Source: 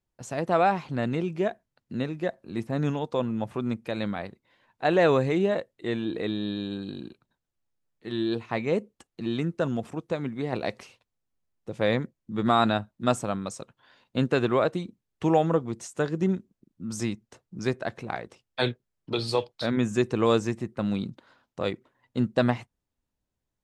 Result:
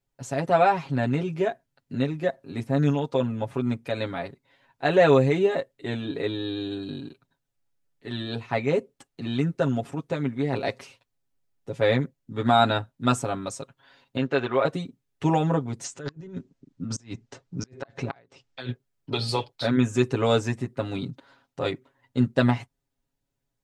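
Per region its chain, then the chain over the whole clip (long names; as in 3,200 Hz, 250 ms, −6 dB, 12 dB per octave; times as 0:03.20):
0:14.17–0:14.65: Gaussian smoothing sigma 1.6 samples + low-shelf EQ 290 Hz −11.5 dB
0:15.84–0:18.69: low-pass filter 7,300 Hz 24 dB per octave + compressor whose output falls as the input rises −34 dBFS + gate with flip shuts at −20 dBFS, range −27 dB
whole clip: notch filter 1,100 Hz, Q 24; comb filter 7.3 ms, depth 91%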